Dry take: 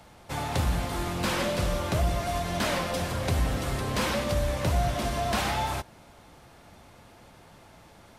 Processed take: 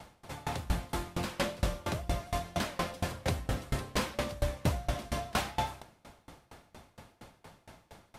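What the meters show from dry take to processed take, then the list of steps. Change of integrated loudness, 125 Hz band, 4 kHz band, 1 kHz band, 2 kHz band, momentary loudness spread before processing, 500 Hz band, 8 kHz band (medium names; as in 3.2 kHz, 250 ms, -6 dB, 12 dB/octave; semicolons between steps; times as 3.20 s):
-6.5 dB, -6.5 dB, -6.5 dB, -6.5 dB, -6.5 dB, 4 LU, -7.0 dB, -6.5 dB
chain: in parallel at -2.5 dB: compression, threshold -40 dBFS, peak gain reduction 17.5 dB; on the sum: sawtooth tremolo in dB decaying 4.3 Hz, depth 26 dB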